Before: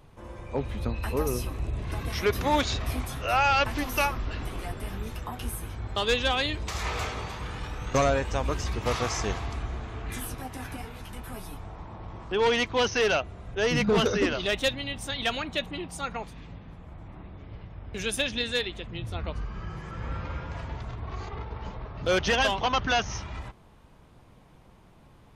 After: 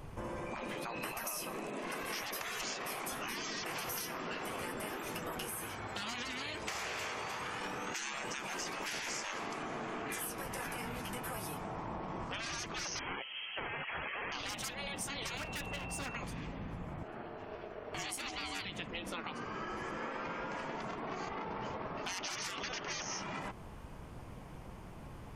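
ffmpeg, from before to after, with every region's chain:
-filter_complex "[0:a]asettb=1/sr,asplit=3[a][b][c];[a]atrim=end=5.474[d];[b]atrim=start=5.47:end=7.61,asetpts=PTS-STARTPTS,afade=t=in:d=0.004:c=qsin,afade=t=out:st=2.136:d=0.004:c=qsin,highpass=160,acrossover=split=4000[e][f];[f]acompressor=threshold=-41dB:ratio=4:attack=1:release=60[g];[e][g]amix=inputs=2:normalize=0,lowshelf=f=400:g=-10.5[h];[c]atrim=start=7.606[i];[d][h]acrossfade=d=0.004:c1=hsin:c2=qsin[j];[j][i]acrossfade=d=0.004:c1=qsin:c2=hsin,asettb=1/sr,asplit=3[k][l][m];[k]atrim=end=12.994[n];[l]atrim=start=12.99:end=14.32,asetpts=PTS-STARTPTS,afade=t=in:d=0.004:c=qsin,afade=t=out:st=1.326:d=0.004:c=qsin,lowpass=f=2.8k:t=q:w=0.5098,lowpass=f=2.8k:t=q:w=0.6013,lowpass=f=2.8k:t=q:w=0.9,lowpass=f=2.8k:t=q:w=2.563,afreqshift=-3300,asplit=2[o][p];[p]adelay=15,volume=-10.5dB[q];[o][q]amix=inputs=2:normalize=0,atrim=end_sample=58653[r];[m]atrim=start=14.316[s];[n][r]acrossfade=d=0.004:c1=hsin:c2=qsin[t];[t][s]acrossfade=d=0.004:c1=qsin:c2=hsin,asettb=1/sr,asplit=3[u][v][w];[u]atrim=end=15.374[x];[v]atrim=start=15.37:end=16.15,asetpts=PTS-STARTPTS,afade=t=in:d=0.004:c=qsin,afade=t=out:st=0.776:d=0.004:c=qsin,highshelf=f=4k:g=-5,asoftclip=type=hard:threshold=-35.5dB,aeval=exprs='val(0)+0.00355*sin(2*PI*2700*n/s)':c=same[y];[w]atrim=start=16.146[z];[x][y]acrossfade=d=0.004:c1=hsin:c2=qsin[aa];[aa][z]acrossfade=d=0.004:c1=qsin:c2=hsin,asettb=1/sr,asplit=3[ab][ac][ad];[ab]atrim=end=17.034[ae];[ac]atrim=start=17.03:end=18.65,asetpts=PTS-STARTPTS,afade=t=in:d=0.004:c=qsin,afade=t=out:st=1.616:d=0.004:c=qsin,highpass=f=210:p=1,aeval=exprs='val(0)*sin(2*PI*530*n/s)':c=same[af];[ad]atrim=start=18.646[ag];[ae][af]acrossfade=d=0.004:c1=hsin:c2=qsin[ah];[ah][ag]acrossfade=d=0.004:c1=qsin:c2=hsin,afftfilt=real='re*lt(hypot(re,im),0.0562)':imag='im*lt(hypot(re,im),0.0562)':win_size=1024:overlap=0.75,equalizer=f=3.8k:t=o:w=0.35:g=-7.5,acompressor=threshold=-43dB:ratio=6,volume=6dB"

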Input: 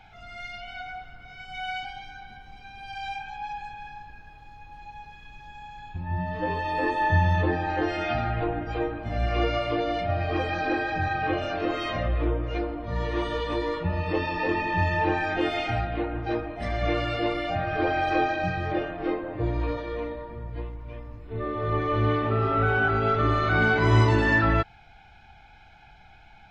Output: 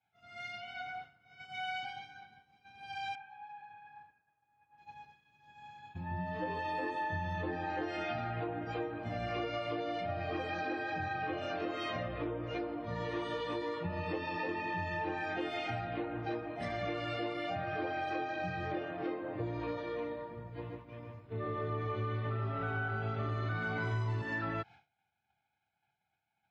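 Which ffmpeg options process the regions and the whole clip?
-filter_complex "[0:a]asettb=1/sr,asplit=3[a][b][c];[a]atrim=end=3.154[d];[b]atrim=start=3.15:end=4.78,asetpts=PTS-STARTPTS,afade=t=in:d=0.004:c=qsin,afade=t=out:st=1.626:d=0.004:c=qsin,tiltshelf=f=880:g=-6.5,acompressor=threshold=-37dB:ratio=6:attack=3.2:release=140:knee=1:detection=peak,lowpass=1.5k[e];[c]atrim=start=4.776[f];[d][e]acrossfade=d=0.004:c1=hsin:c2=qsin[g];[g][f]acrossfade=d=0.004:c1=qsin:c2=hsin,asettb=1/sr,asplit=3[h][i][j];[h]atrim=end=20.484[k];[i]atrim=start=20.48:end=24.22,asetpts=PTS-STARTPTS,afade=t=in:d=0.004:c=qsin,afade=t=out:st=3.736:d=0.004:c=qsin,asubboost=boost=2.5:cutoff=170,asplit=2[l][m];[m]adelay=144,lowpass=f=3.4k:p=1,volume=-3dB,asplit=2[n][o];[o]adelay=144,lowpass=f=3.4k:p=1,volume=0.29,asplit=2[p][q];[q]adelay=144,lowpass=f=3.4k:p=1,volume=0.29,asplit=2[r][s];[s]adelay=144,lowpass=f=3.4k:p=1,volume=0.29[t];[l][n][p][r][t]amix=inputs=5:normalize=0,atrim=end_sample=164934[u];[j]atrim=start=24.216[v];[k][u]acrossfade=d=0.004:c1=hsin:c2=qsin[w];[w][v]acrossfade=d=0.004:c1=qsin:c2=hsin,highpass=f=100:w=0.5412,highpass=f=100:w=1.3066,agate=range=-33dB:threshold=-38dB:ratio=3:detection=peak,acompressor=threshold=-29dB:ratio=6,volume=-4.5dB"

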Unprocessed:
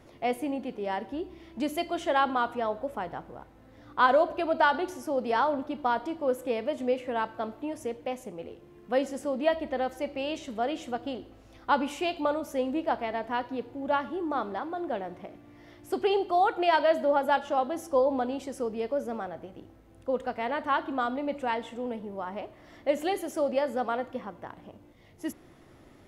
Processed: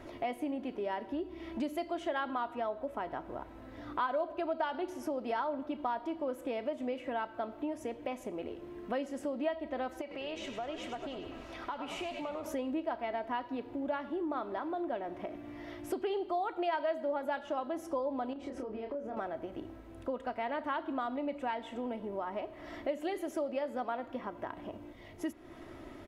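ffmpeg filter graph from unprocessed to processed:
-filter_complex "[0:a]asettb=1/sr,asplit=3[a][b][c];[a]atrim=end=10.014[d];[b]atrim=start=10.01:end=12.46,asetpts=PTS-STARTPTS,afade=t=in:d=0.004:c=qsin,afade=t=out:st=2.446:d=0.004:c=qsin,acompressor=threshold=-48dB:ratio=2.5:attack=3.2:release=140:knee=1:detection=peak,asplit=2[e][f];[f]highpass=f=720:p=1,volume=10dB,asoftclip=type=tanh:threshold=-25.5dB[g];[e][g]amix=inputs=2:normalize=0,lowpass=f=5.6k:p=1,volume=-6dB,asplit=8[h][i][j][k][l][m][n][o];[i]adelay=100,afreqshift=-97,volume=-8dB[p];[j]adelay=200,afreqshift=-194,volume=-12.9dB[q];[k]adelay=300,afreqshift=-291,volume=-17.8dB[r];[l]adelay=400,afreqshift=-388,volume=-22.6dB[s];[m]adelay=500,afreqshift=-485,volume=-27.5dB[t];[n]adelay=600,afreqshift=-582,volume=-32.4dB[u];[o]adelay=700,afreqshift=-679,volume=-37.3dB[v];[h][p][q][r][s][t][u][v]amix=inputs=8:normalize=0,atrim=end_sample=108045[w];[c]atrim=start=12.456[x];[d][w]acrossfade=d=0.004:c1=hsin:c2=qsin[y];[y][x]acrossfade=d=0.004:c1=qsin:c2=hsin,asettb=1/sr,asplit=3[z][aa][ab];[z]atrim=end=18.334[ac];[aa]atrim=start=18.33:end=19.17,asetpts=PTS-STARTPTS,afade=t=in:d=0.004:c=qsin,afade=t=out:st=0.836:d=0.004:c=qsin,aemphasis=mode=reproduction:type=75fm,acompressor=threshold=-40dB:ratio=6:attack=3.2:release=140:knee=1:detection=peak,asplit=2[ad][ae];[ae]adelay=28,volume=-4dB[af];[ad][af]amix=inputs=2:normalize=0,atrim=end_sample=37044[ag];[ab]atrim=start=19.166[ah];[ac][ag]acrossfade=d=0.004:c1=hsin:c2=qsin[ai];[ai][ah]acrossfade=d=0.004:c1=qsin:c2=hsin,bass=f=250:g=-3,treble=f=4k:g=-7,aecho=1:1:3.1:0.42,acompressor=threshold=-43dB:ratio=3,volume=6dB"

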